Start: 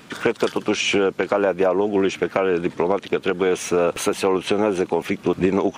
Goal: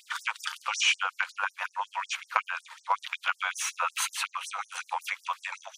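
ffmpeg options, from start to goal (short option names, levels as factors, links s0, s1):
-af "lowshelf=f=790:t=q:w=3:g=-8.5,afftfilt=real='re*gte(b*sr/1024,490*pow(5300/490,0.5+0.5*sin(2*PI*5.4*pts/sr)))':imag='im*gte(b*sr/1024,490*pow(5300/490,0.5+0.5*sin(2*PI*5.4*pts/sr)))':win_size=1024:overlap=0.75,volume=0.794"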